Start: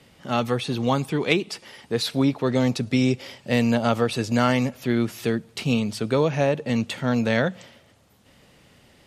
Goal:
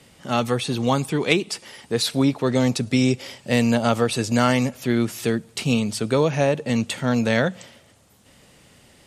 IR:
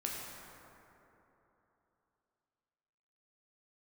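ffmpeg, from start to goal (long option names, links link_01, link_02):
-af "equalizer=frequency=8500:width=1.1:gain=7.5,volume=1.5dB"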